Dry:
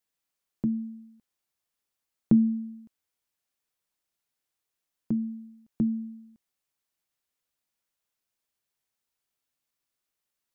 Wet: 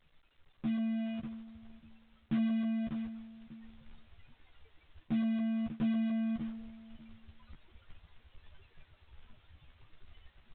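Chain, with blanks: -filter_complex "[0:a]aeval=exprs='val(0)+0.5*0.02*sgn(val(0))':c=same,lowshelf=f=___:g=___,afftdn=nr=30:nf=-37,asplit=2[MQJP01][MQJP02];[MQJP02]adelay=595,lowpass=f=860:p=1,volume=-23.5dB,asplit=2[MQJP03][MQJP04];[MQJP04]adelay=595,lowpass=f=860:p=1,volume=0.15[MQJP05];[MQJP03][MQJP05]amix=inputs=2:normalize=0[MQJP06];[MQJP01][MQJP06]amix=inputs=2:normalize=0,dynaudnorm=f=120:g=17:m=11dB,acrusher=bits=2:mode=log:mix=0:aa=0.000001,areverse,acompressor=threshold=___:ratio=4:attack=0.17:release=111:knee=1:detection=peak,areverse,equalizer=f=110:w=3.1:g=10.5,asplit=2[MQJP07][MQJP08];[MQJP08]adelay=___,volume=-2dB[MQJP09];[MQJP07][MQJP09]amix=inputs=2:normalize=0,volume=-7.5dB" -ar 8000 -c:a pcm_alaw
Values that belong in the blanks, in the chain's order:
64, 11.5, -30dB, 13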